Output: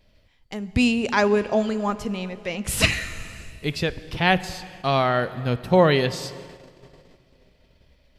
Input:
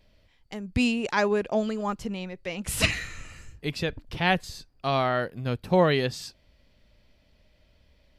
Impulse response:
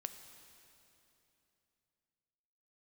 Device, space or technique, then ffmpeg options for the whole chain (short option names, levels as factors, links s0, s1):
keyed gated reverb: -filter_complex "[0:a]asplit=3[s0][s1][s2];[1:a]atrim=start_sample=2205[s3];[s1][s3]afir=irnorm=-1:irlink=0[s4];[s2]apad=whole_len=360949[s5];[s4][s5]sidechaingate=range=0.398:threshold=0.00112:ratio=16:detection=peak,volume=1.33[s6];[s0][s6]amix=inputs=2:normalize=0,volume=0.841"